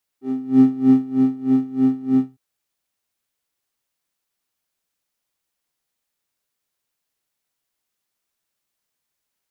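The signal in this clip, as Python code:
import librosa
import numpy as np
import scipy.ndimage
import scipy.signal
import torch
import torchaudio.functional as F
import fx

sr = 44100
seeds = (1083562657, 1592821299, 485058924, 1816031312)

y = fx.sub_patch_tremolo(sr, seeds[0], note=60, wave='square', wave2='square', interval_st=7, detune_cents=16, level2_db=-9.5, sub_db=-10.5, noise_db=-4.0, kind='bandpass', cutoff_hz=130.0, q=3.1, env_oct=1.5, env_decay_s=0.27, env_sustain_pct=50, attack_ms=449.0, decay_s=0.56, sustain_db=-5.5, release_s=0.18, note_s=1.98, lfo_hz=3.2, tremolo_db=20.5)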